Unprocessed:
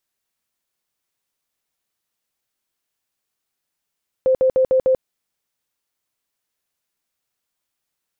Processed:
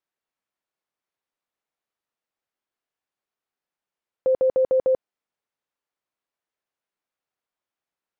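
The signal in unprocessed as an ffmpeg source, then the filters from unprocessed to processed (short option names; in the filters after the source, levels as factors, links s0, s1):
-f lavfi -i "aevalsrc='0.251*sin(2*PI*520*mod(t,0.15))*lt(mod(t,0.15),46/520)':d=0.75:s=44100"
-af "lowpass=f=1100:p=1,lowshelf=f=250:g=-12"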